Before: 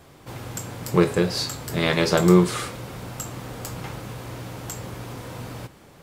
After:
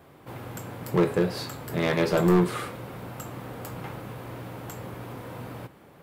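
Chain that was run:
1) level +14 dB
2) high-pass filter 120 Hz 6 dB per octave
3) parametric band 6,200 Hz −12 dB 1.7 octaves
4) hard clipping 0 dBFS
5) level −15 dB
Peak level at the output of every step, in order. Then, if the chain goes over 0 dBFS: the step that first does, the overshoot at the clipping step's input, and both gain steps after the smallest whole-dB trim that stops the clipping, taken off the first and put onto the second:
+10.5, +10.5, +9.5, 0.0, −15.0 dBFS
step 1, 9.5 dB
step 1 +4 dB, step 5 −5 dB

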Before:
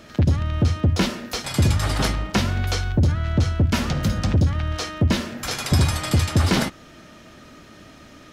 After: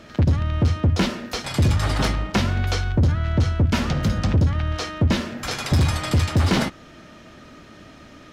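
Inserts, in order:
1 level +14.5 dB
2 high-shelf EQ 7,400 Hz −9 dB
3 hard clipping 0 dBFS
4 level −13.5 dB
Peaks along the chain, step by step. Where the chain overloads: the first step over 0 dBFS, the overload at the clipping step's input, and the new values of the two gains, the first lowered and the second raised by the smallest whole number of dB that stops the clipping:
+7.0, +6.0, 0.0, −13.5 dBFS
step 1, 6.0 dB
step 1 +8.5 dB, step 4 −7.5 dB

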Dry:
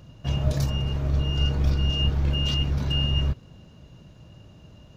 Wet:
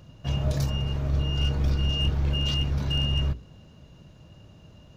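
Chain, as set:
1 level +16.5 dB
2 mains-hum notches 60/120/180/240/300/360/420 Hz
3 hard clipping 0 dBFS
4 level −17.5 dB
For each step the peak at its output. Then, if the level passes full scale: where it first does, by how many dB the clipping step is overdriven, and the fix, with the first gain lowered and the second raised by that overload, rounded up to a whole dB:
+6.0, +5.5, 0.0, −17.5 dBFS
step 1, 5.5 dB
step 1 +10.5 dB, step 4 −11.5 dB

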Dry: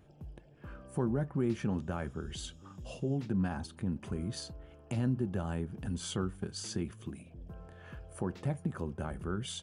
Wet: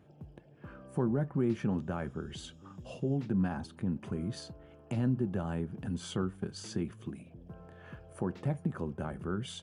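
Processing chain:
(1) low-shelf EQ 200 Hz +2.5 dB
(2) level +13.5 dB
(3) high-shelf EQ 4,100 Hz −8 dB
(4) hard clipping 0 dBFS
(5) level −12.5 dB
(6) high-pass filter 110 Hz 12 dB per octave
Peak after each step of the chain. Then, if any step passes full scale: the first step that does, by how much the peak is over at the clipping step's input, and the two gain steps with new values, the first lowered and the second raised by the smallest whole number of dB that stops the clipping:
−19.5, −6.0, −6.0, −6.0, −18.5, −18.5 dBFS
no step passes full scale

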